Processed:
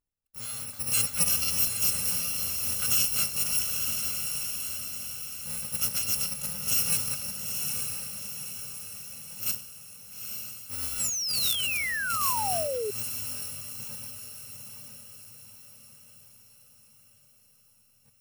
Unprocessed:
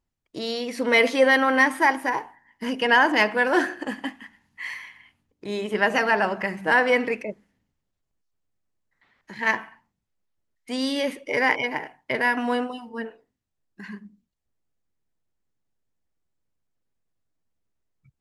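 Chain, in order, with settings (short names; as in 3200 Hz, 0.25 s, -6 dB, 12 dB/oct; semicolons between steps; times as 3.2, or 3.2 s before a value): FFT order left unsorted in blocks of 128 samples; diffused feedback echo 0.886 s, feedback 51%, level -4 dB; painted sound fall, 10.99–12.91, 400–8000 Hz -23 dBFS; gain -7.5 dB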